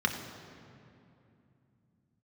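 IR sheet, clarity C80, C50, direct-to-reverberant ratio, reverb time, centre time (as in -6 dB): 7.5 dB, 6.5 dB, 2.5 dB, 2.7 s, 41 ms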